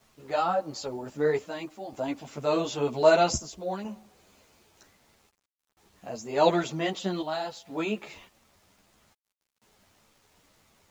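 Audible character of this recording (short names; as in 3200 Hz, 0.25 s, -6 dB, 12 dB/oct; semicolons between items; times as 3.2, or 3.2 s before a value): chopped level 0.52 Hz, depth 60%, duty 75%; a quantiser's noise floor 10-bit, dither none; a shimmering, thickened sound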